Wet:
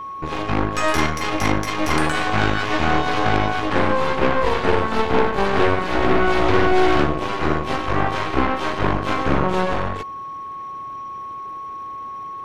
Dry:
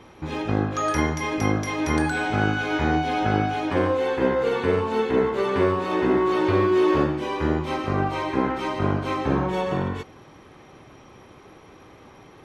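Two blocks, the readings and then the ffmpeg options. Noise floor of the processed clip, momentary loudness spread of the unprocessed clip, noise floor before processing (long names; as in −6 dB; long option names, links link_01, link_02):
−32 dBFS, 5 LU, −49 dBFS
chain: -af "aeval=exprs='0.473*(cos(1*acos(clip(val(0)/0.473,-1,1)))-cos(1*PI/2))+0.133*(cos(8*acos(clip(val(0)/0.473,-1,1)))-cos(8*PI/2))':channel_layout=same,aeval=exprs='val(0)+0.0355*sin(2*PI*1100*n/s)':channel_layout=same"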